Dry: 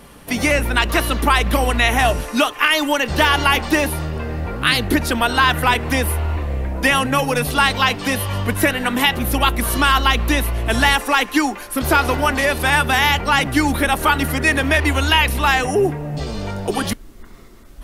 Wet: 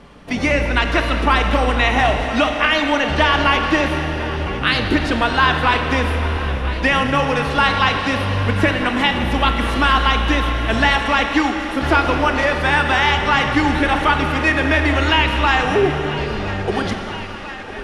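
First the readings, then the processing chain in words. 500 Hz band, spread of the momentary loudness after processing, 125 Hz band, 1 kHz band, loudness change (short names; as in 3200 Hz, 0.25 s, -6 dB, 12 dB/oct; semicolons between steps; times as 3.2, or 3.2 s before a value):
+1.5 dB, 7 LU, +0.5 dB, +1.0 dB, +0.5 dB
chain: air absorption 120 m; thinning echo 1.004 s, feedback 75%, high-pass 220 Hz, level -15 dB; Schroeder reverb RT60 3.5 s, combs from 28 ms, DRR 4.5 dB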